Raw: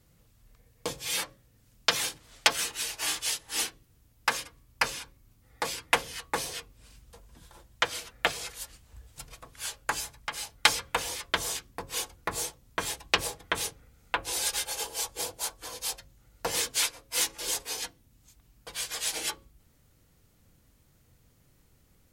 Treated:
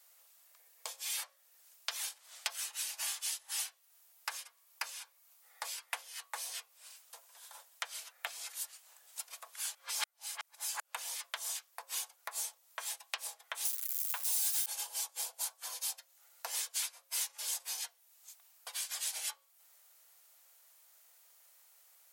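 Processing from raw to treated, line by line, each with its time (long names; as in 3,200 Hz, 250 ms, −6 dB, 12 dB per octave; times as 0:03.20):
0:09.75–0:10.94: reverse
0:13.65–0:14.66: spike at every zero crossing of −22.5 dBFS
whole clip: downward compressor 2.5 to 1, threshold −46 dBFS; Butterworth high-pass 620 Hz 36 dB per octave; high-shelf EQ 6,200 Hz +10 dB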